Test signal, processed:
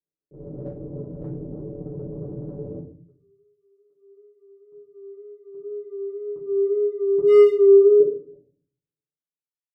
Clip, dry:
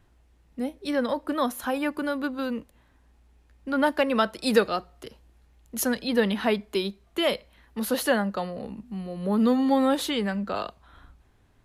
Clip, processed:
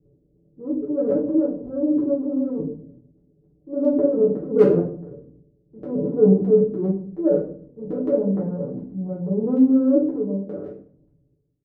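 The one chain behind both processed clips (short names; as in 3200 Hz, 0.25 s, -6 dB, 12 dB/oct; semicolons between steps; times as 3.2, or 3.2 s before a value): ending faded out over 2.37 s; Chebyshev low-pass 520 Hz, order 5; wow and flutter 43 cents; transient shaper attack -7 dB, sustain +10 dB; notches 60/120/180/240 Hz; comb 6.9 ms, depth 69%; hard clip -14.5 dBFS; HPF 100 Hz 12 dB/oct; shoebox room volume 49 m³, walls mixed, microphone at 1.1 m; gain +1 dB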